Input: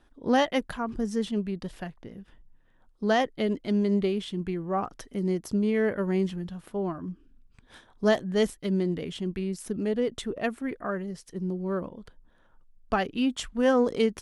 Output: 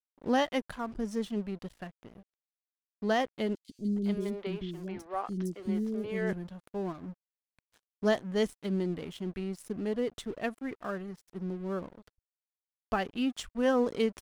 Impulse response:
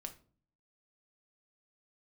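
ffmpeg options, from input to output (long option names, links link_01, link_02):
-filter_complex "[0:a]aeval=exprs='sgn(val(0))*max(abs(val(0))-0.00501,0)':channel_layout=same,asettb=1/sr,asplit=3[link_01][link_02][link_03];[link_01]atrim=end=3.554[link_04];[link_02]atrim=start=3.55:end=6.33,asetpts=PTS-STARTPTS,afade=type=in:duration=0.004:curve=qsin,afade=type=out:start_time=2.776:duration=0.004:curve=qsin,acrossover=split=380|4500[link_05][link_06][link_07];[link_05]adelay=140[link_08];[link_06]adelay=410[link_09];[link_08][link_09][link_07]amix=inputs=3:normalize=0,atrim=end_sample=122598[link_10];[link_03]atrim=start=6.326[link_11];[link_04][link_10]acrossfade=duration=0.004:curve1=hsin:curve2=qsin[link_12];[link_12][link_11]acrossfade=duration=0.004:curve1=qsin:curve2=hsin,volume=-4dB"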